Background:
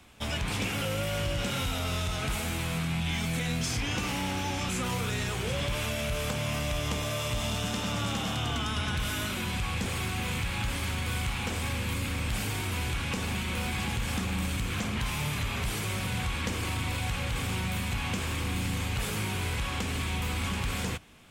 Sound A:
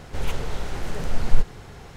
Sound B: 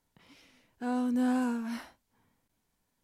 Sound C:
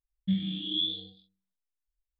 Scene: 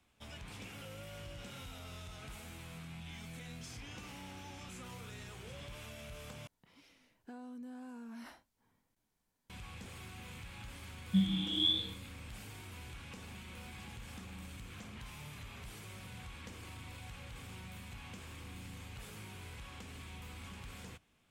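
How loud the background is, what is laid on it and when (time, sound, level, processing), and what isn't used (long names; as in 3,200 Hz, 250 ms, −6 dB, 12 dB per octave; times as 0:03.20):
background −17.5 dB
0:06.47: overwrite with B −5 dB + downward compressor 16 to 1, threshold −39 dBFS
0:10.86: mix in C −1 dB
not used: A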